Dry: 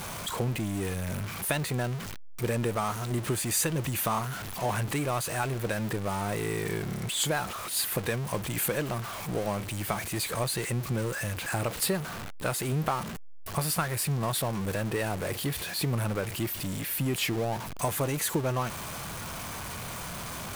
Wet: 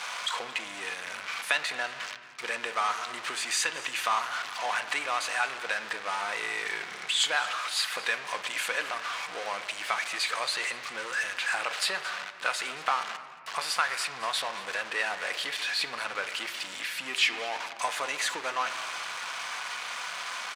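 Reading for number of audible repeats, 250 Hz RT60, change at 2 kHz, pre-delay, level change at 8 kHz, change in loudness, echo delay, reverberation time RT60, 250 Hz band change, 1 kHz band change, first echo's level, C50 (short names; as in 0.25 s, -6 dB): 1, 3.7 s, +7.0 dB, 4 ms, -3.0 dB, 0.0 dB, 0.224 s, 2.2 s, -18.5 dB, +2.5 dB, -18.0 dB, 11.0 dB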